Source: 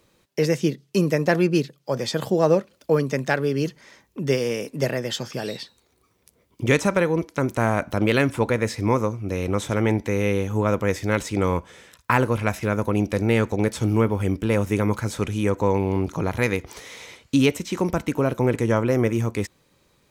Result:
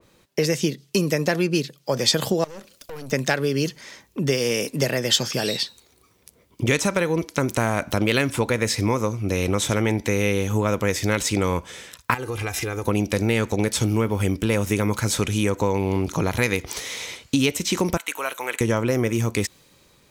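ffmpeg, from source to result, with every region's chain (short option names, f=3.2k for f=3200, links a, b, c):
-filter_complex "[0:a]asettb=1/sr,asplit=3[a][b][c];[a]atrim=end=2.444[d];[b]atrim=start=2.44:end=3.12,asetpts=PTS-STARTPTS,afade=t=in:d=0.004:c=qsin,afade=t=out:st=0.676:d=0.004:c=qsin,highshelf=f=3.8k:g=8.5,acompressor=threshold=-29dB:ratio=8:attack=3.2:release=140:knee=1:detection=peak,aeval=exprs='(tanh(70.8*val(0)+0.75)-tanh(0.75))/70.8':c=same[e];[c]atrim=start=3.116[f];[d][e]acrossfade=d=0.004:c1=hsin:c2=qsin[g];[g][f]acrossfade=d=0.004:c1=qsin:c2=hsin,asettb=1/sr,asplit=3[h][i][j];[h]atrim=end=12.144[k];[i]atrim=start=12.14:end=12.86,asetpts=PTS-STARTPTS,afade=t=in:d=0.004:c=qsin,afade=t=out:st=0.716:d=0.004:c=qsin,aecho=1:1:2.5:0.68,atrim=end_sample=31752,acompressor=threshold=-29dB:ratio=6:attack=3.2:release=140:knee=1:detection=peak[l];[j]atrim=start=12.856[m];[k][l]acrossfade=d=0.004:c1=hsin:c2=qsin[n];[n][m]acrossfade=d=0.004:c1=qsin:c2=hsin,asettb=1/sr,asplit=3[o][p][q];[o]atrim=end=17.974[r];[p]atrim=start=17.97:end=18.61,asetpts=PTS-STARTPTS,afade=t=in:d=0.004:c=qsin,afade=t=out:st=0.636:d=0.004:c=qsin,highpass=1.1k,equalizer=f=5.1k:t=o:w=0.4:g=-12.5[s];[q]atrim=start=18.606[t];[r][s]acrossfade=d=0.004:c1=hsin:c2=qsin[u];[u][t]acrossfade=d=0.004:c1=qsin:c2=hsin,acompressor=threshold=-23dB:ratio=4,adynamicequalizer=threshold=0.00501:dfrequency=2300:dqfactor=0.7:tfrequency=2300:tqfactor=0.7:attack=5:release=100:ratio=0.375:range=4:mode=boostabove:tftype=highshelf,volume=4.5dB"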